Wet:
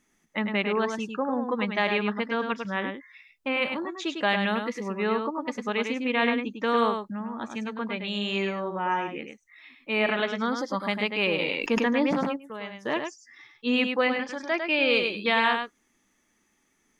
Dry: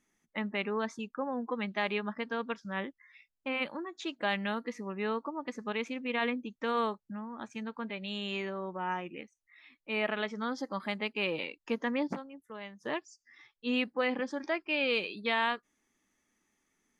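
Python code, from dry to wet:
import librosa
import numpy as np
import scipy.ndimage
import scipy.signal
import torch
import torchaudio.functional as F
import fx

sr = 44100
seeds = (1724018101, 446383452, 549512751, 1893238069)

y = fx.peak_eq(x, sr, hz=330.0, db=fx.line((14.12, -14.0), (14.53, -3.5)), octaves=2.3, at=(14.12, 14.53), fade=0.02)
y = y + 10.0 ** (-6.0 / 20.0) * np.pad(y, (int(102 * sr / 1000.0), 0))[:len(y)]
y = fx.sustainer(y, sr, db_per_s=23.0, at=(11.39, 12.35), fade=0.02)
y = y * 10.0 ** (6.5 / 20.0)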